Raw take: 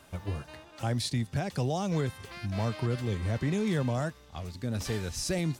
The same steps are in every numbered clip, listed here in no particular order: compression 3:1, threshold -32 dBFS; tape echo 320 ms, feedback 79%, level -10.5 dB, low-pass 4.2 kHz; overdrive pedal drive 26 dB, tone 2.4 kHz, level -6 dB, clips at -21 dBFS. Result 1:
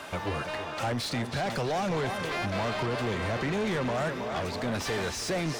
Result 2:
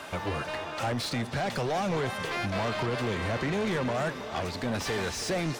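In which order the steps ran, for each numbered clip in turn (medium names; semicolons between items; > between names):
compression > tape echo > overdrive pedal; compression > overdrive pedal > tape echo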